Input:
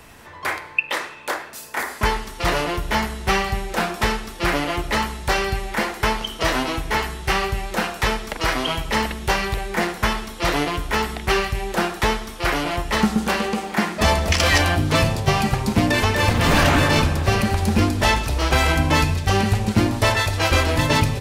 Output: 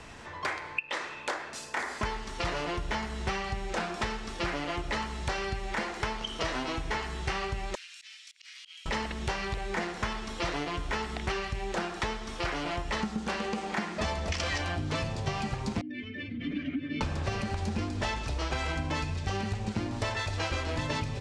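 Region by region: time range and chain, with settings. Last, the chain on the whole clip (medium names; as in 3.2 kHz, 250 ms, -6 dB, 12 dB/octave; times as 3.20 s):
7.75–8.86 s: inverse Chebyshev high-pass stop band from 530 Hz, stop band 70 dB + slow attack 526 ms + compression, threshold -41 dBFS
15.81–17.01 s: spectral contrast enhancement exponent 1.7 + vowel filter i
whole clip: low-pass 7.8 kHz 24 dB/octave; compression, threshold -28 dBFS; trim -1.5 dB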